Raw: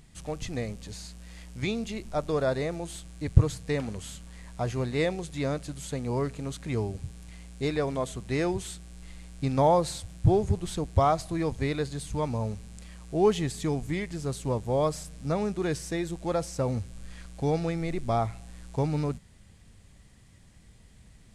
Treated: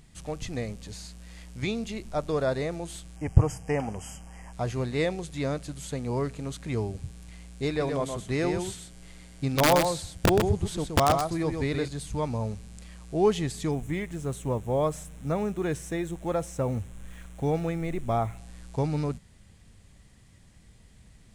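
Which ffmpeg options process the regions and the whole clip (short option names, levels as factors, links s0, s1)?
-filter_complex "[0:a]asettb=1/sr,asplit=3[s0][s1][s2];[s0]atrim=end=3.164[s3];[s1]atrim=start=3.16:end=4.53,asetpts=PTS-STARTPTS,afade=t=in:d=0.004:c=qsin,afade=t=out:st=1.366:d=0.004:c=qsin,asuperstop=centerf=3900:order=20:qfactor=2.5,equalizer=f=790:t=o:w=0.52:g=12.5[s4];[s2]atrim=start=4.526[s5];[s3][s4]acrossfade=d=0.004:c1=hsin:c2=qsin[s6];[s6][s5]acrossfade=d=0.004:c1=qsin:c2=hsin,asettb=1/sr,asplit=3[s7][s8][s9];[s7]atrim=end=7.684[s10];[s8]atrim=start=7.68:end=11.88,asetpts=PTS-STARTPTS,afade=t=in:d=0.004:c=qsin,afade=t=out:st=4.196:d=0.004:c=qsin,aeval=exprs='(mod(4.73*val(0)+1,2)-1)/4.73':c=same,aecho=1:1:124:0.531,atrim=end_sample=185220[s11];[s9]atrim=start=11.876[s12];[s10][s11]acrossfade=d=0.004:c1=hsin:c2=qsin[s13];[s13][s12]acrossfade=d=0.004:c1=qsin:c2=hsin,asettb=1/sr,asplit=3[s14][s15][s16];[s14]atrim=end=13.714[s17];[s15]atrim=start=13.71:end=18.38,asetpts=PTS-STARTPTS,afade=t=in:d=0.004:c=qsin,afade=t=out:st=4.666:d=0.004:c=qsin,acrusher=bits=8:mix=0:aa=0.5,equalizer=f=4700:t=o:w=0.39:g=-15[s18];[s16]atrim=start=18.376[s19];[s17][s18]acrossfade=d=0.004:c1=hsin:c2=qsin[s20];[s20][s19]acrossfade=d=0.004:c1=qsin:c2=hsin"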